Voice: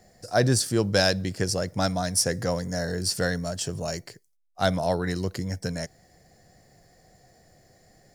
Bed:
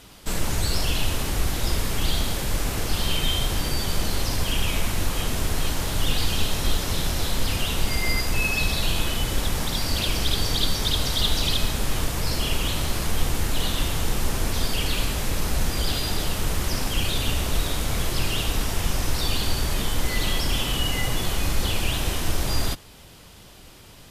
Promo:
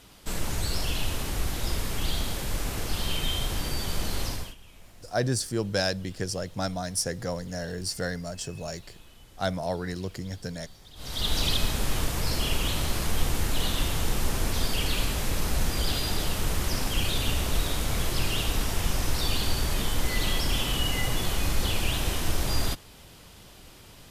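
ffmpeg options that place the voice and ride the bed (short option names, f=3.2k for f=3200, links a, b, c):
-filter_complex "[0:a]adelay=4800,volume=-5dB[a];[1:a]volume=20dB,afade=t=out:st=4.26:d=0.29:silence=0.0749894,afade=t=in:st=10.95:d=0.44:silence=0.0562341[b];[a][b]amix=inputs=2:normalize=0"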